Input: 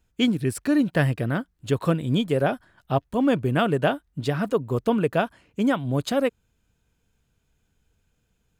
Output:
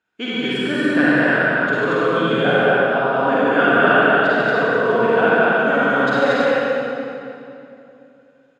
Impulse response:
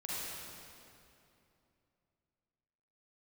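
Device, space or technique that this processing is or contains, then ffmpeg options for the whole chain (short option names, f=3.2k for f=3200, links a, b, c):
station announcement: -filter_complex "[0:a]highpass=320,lowpass=3.9k,equalizer=f=1.5k:t=o:w=0.39:g=11,aecho=1:1:145.8|230.3:0.708|0.891[a];[1:a]atrim=start_sample=2205[b];[a][b]afir=irnorm=-1:irlink=0,volume=3dB"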